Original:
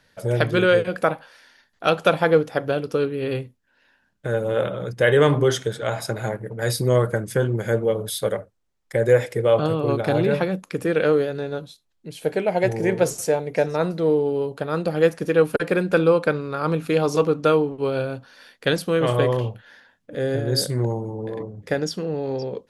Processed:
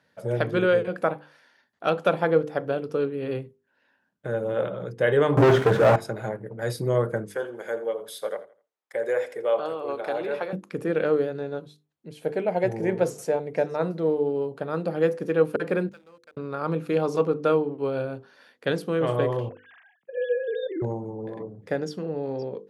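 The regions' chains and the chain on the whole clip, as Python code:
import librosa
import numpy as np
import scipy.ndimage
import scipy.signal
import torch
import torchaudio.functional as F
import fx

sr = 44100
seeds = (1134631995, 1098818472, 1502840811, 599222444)

y = fx.chain(x, sr, fx.crossing_spikes(level_db=-17.0),
    fx.lowpass(hz=1400.0, slope=12),
    fx.leveller(passes=5), at=(5.37, 5.96))
y = fx.chain(y, sr, fx.highpass(hz=520.0, slope=12),
    fx.echo_feedback(ms=83, feedback_pct=29, wet_db=-16.5), at=(7.27, 10.53))
y = fx.chain(y, sr, fx.bandpass_q(hz=6600.0, q=2.6),
    fx.backlash(play_db=-43.5), at=(15.89, 16.37))
y = fx.chain(y, sr, fx.sine_speech(),
    fx.high_shelf(hz=2800.0, db=7.0),
    fx.sustainer(db_per_s=140.0), at=(19.49, 20.82))
y = scipy.signal.sosfilt(scipy.signal.butter(2, 130.0, 'highpass', fs=sr, output='sos'), y)
y = fx.high_shelf(y, sr, hz=2200.0, db=-10.0)
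y = fx.hum_notches(y, sr, base_hz=50, count=10)
y = y * librosa.db_to_amplitude(-2.5)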